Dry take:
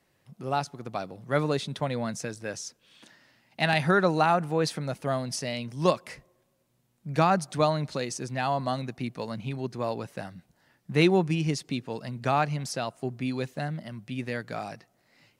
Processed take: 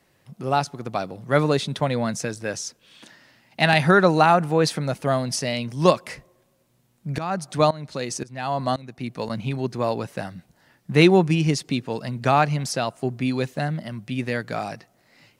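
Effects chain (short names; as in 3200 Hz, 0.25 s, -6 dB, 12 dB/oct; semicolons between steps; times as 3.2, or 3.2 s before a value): 7.18–9.3 tremolo saw up 1.9 Hz, depth 90%; gain +6.5 dB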